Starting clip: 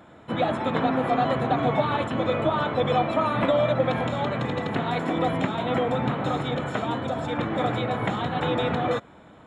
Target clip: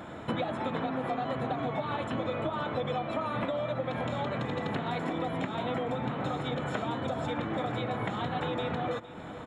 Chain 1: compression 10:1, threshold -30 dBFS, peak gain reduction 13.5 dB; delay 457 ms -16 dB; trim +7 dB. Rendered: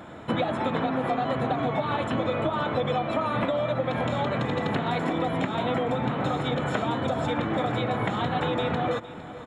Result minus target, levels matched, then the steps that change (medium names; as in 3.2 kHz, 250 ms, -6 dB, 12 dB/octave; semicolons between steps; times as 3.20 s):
compression: peak gain reduction -6 dB
change: compression 10:1, threshold -36.5 dBFS, peak gain reduction 19 dB